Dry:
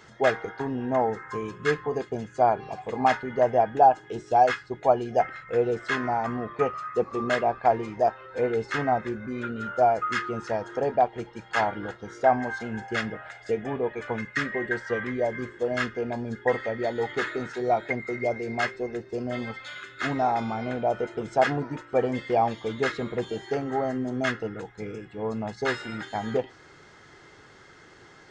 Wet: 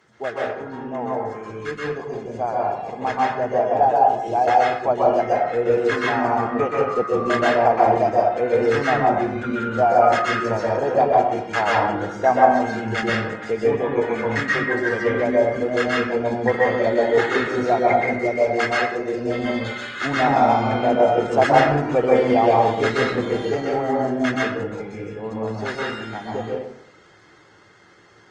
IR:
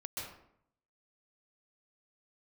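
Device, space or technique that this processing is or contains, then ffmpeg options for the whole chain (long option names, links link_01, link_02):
far-field microphone of a smart speaker: -filter_complex "[0:a]asettb=1/sr,asplit=3[link_01][link_02][link_03];[link_01]atrim=end=18.074[link_04];[link_02]atrim=start=18.07:end=19.21,asetpts=PTS-STARTPTS,afade=type=in:duration=0.004:curve=qsin,afade=type=out:start_time=1.136:duration=0.004:curve=qsin,lowshelf=frequency=430:gain=-4.5[link_05];[link_03]atrim=start=19.206[link_06];[link_04][link_05]acrossfade=duration=0.004:curve1=hsin:curve2=qsin[link_07];[link_07][link_06]acrossfade=duration=0.004:curve1=qsin:curve2=hsin[link_08];[1:a]atrim=start_sample=2205[link_09];[link_08][link_09]afir=irnorm=-1:irlink=0,highpass=120,dynaudnorm=framelen=540:gausssize=17:maxgain=15dB" -ar 48000 -c:a libopus -b:a 24k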